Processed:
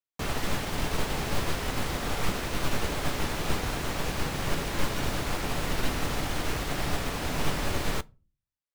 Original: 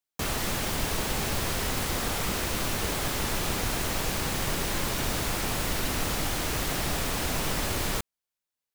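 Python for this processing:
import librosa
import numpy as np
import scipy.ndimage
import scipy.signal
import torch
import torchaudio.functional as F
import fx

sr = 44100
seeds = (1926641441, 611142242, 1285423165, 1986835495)

y = fx.high_shelf(x, sr, hz=5700.0, db=-9.5)
y = fx.room_shoebox(y, sr, seeds[0], volume_m3=150.0, walls='furnished', distance_m=0.34)
y = fx.upward_expand(y, sr, threshold_db=-41.0, expansion=1.5)
y = y * 10.0 ** (2.5 / 20.0)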